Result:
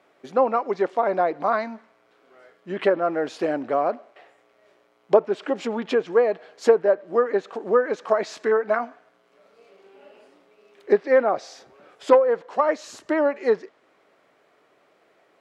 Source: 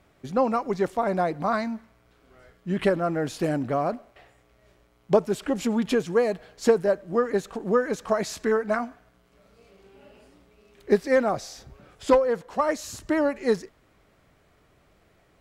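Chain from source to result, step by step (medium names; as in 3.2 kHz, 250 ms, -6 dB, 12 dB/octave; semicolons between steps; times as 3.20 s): low-pass that closes with the level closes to 2.6 kHz, closed at -18 dBFS; Chebyshev high-pass 420 Hz, order 2; treble shelf 6 kHz -11.5 dB; trim +4 dB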